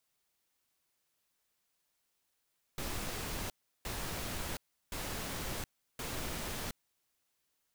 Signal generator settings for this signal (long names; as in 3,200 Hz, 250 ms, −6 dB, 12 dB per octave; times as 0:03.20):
noise bursts pink, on 0.72 s, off 0.35 s, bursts 4, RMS −39 dBFS